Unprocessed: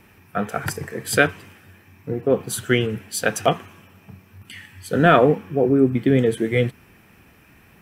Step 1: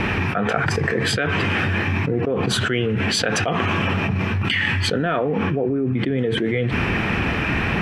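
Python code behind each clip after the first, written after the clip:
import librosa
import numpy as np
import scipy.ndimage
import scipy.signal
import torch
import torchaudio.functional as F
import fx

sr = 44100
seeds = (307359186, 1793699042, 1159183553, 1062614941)

y = scipy.signal.sosfilt(scipy.signal.cheby1(2, 1.0, 3000.0, 'lowpass', fs=sr, output='sos'), x)
y = fx.env_flatten(y, sr, amount_pct=100)
y = F.gain(torch.from_numpy(y), -8.5).numpy()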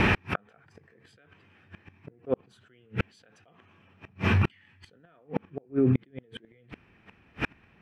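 y = fx.gate_flip(x, sr, shuts_db=-12.0, range_db=-39)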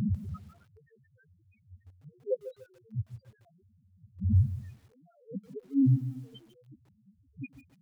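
y = x + 10.0 ** (-19.5 / 20.0) * np.pad(x, (int(171 * sr / 1000.0), 0))[:len(x)]
y = fx.spec_topn(y, sr, count=1)
y = fx.echo_crushed(y, sr, ms=146, feedback_pct=35, bits=10, wet_db=-13.0)
y = F.gain(torch.from_numpy(y), 6.5).numpy()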